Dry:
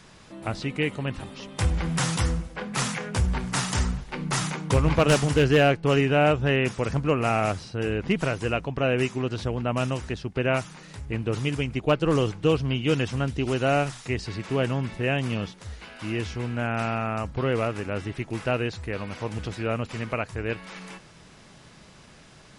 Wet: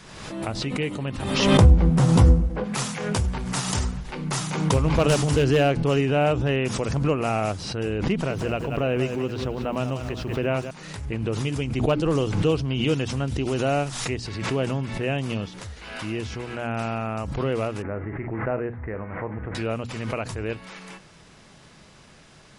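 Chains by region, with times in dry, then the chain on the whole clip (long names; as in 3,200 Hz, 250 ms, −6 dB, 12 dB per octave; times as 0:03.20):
0:01.57–0:02.64: tilt shelving filter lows +9.5 dB, about 1,100 Hz + double-tracking delay 16 ms −7 dB
0:08.11–0:10.71: high-shelf EQ 6,600 Hz −10.5 dB + feedback echo at a low word length 187 ms, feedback 35%, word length 9 bits, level −10 dB
0:17.82–0:19.55: elliptic low-pass filter 2,000 Hz, stop band 60 dB + double-tracking delay 42 ms −12.5 dB
whole clip: mains-hum notches 60/120/180/240/300 Hz; dynamic equaliser 1,800 Hz, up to −5 dB, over −40 dBFS, Q 1.1; background raised ahead of every attack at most 44 dB per second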